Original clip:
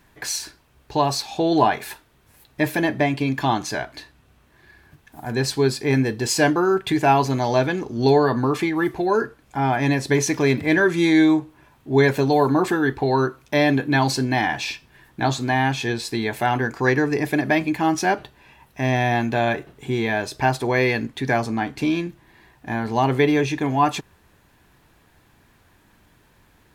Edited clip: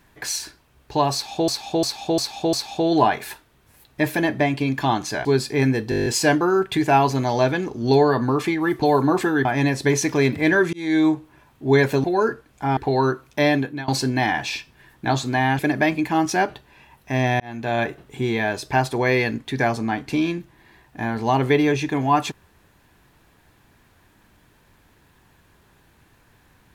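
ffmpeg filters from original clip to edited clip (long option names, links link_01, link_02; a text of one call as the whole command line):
ffmpeg -i in.wav -filter_complex "[0:a]asplit=22[link_01][link_02][link_03][link_04][link_05][link_06][link_07][link_08][link_09][link_10][link_11][link_12][link_13][link_14][link_15][link_16][link_17][link_18][link_19][link_20][link_21][link_22];[link_01]atrim=end=1.482[link_23];[link_02]atrim=start=1.128:end=1.482[link_24];[link_03]atrim=start=1.128:end=1.482[link_25];[link_04]atrim=start=1.128:end=1.482[link_26];[link_05]atrim=start=1.128:end=3.852[link_27];[link_06]atrim=start=5.558:end=6.232[link_28];[link_07]atrim=start=6.208:end=6.232[link_29];[link_08]atrim=start=6.208:end=6.232[link_30];[link_09]atrim=start=6.208:end=6.232[link_31];[link_10]atrim=start=6.208:end=6.232[link_32];[link_11]atrim=start=6.208:end=6.232[link_33];[link_12]atrim=start=6.208:end=6.232[link_34];[link_13]atrim=start=6.208:end=6.232[link_35];[link_14]atrim=start=6.208:end=8.972[link_36];[link_15]atrim=start=12.288:end=12.922[link_37];[link_16]atrim=start=9.698:end=10.98,asetpts=PTS-STARTPTS,afade=type=out:start_time=1.278:duration=0.004:curve=hsin[link_38];[link_17]atrim=start=10.98:end=12.292,asetpts=PTS-STARTPTS,afade=type=in:duration=0.35[link_39];[link_18]atrim=start=8.968:end=9.702[link_40];[link_19]atrim=start=12.918:end=14.03,asetpts=PTS-STARTPTS,afade=type=out:start_time=0.712:duration=0.4:silence=0.0749894[link_41];[link_20]atrim=start=14.03:end=15.742,asetpts=PTS-STARTPTS,afade=type=in:duration=0.004:curve=hsin:silence=0.0749894[link_42];[link_21]atrim=start=17.278:end=19.09,asetpts=PTS-STARTPTS,afade=type=out:start_time=1.808:duration=0.004:curve=hsin[link_43];[link_22]atrim=start=19.09,asetpts=PTS-STARTPTS,afade=type=in:duration=0.43[link_44];[link_23][link_24]acrossfade=duration=0.004:curve1=hsin:curve2=hsin[link_45];[link_45][link_25]acrossfade=duration=0.004:curve1=hsin:curve2=hsin[link_46];[link_46][link_26]acrossfade=duration=0.004:curve1=hsin:curve2=hsin[link_47];[link_47][link_27]acrossfade=duration=0.004:curve1=hsin:curve2=hsin[link_48];[link_48][link_28]acrossfade=duration=0.004:curve1=hsin:curve2=hsin[link_49];[link_49][link_29]acrossfade=duration=0.004:curve1=hsin:curve2=hsin[link_50];[link_50][link_30]acrossfade=duration=0.004:curve1=hsin:curve2=hsin[link_51];[link_51][link_31]acrossfade=duration=0.004:curve1=hsin:curve2=hsin[link_52];[link_52][link_32]acrossfade=duration=0.004:curve1=hsin:curve2=hsin[link_53];[link_53][link_33]acrossfade=duration=0.004:curve1=hsin:curve2=hsin[link_54];[link_54][link_34]acrossfade=duration=0.004:curve1=hsin:curve2=hsin[link_55];[link_55][link_35]acrossfade=duration=0.004:curve1=hsin:curve2=hsin[link_56];[link_56][link_36]acrossfade=duration=0.004:curve1=hsin:curve2=hsin[link_57];[link_57][link_37]acrossfade=duration=0.004:curve1=hsin:curve2=hsin[link_58];[link_38][link_39]concat=n=2:v=0:a=1[link_59];[link_58][link_59]acrossfade=duration=0.004:curve1=hsin:curve2=hsin[link_60];[link_60][link_40]acrossfade=duration=0.004:curve1=hsin:curve2=hsin[link_61];[link_41][link_42]concat=n=2:v=0:a=1[link_62];[link_61][link_62]acrossfade=duration=0.004:curve1=hsin:curve2=hsin[link_63];[link_43][link_44]concat=n=2:v=0:a=1[link_64];[link_63][link_64]acrossfade=duration=0.004:curve1=hsin:curve2=hsin" out.wav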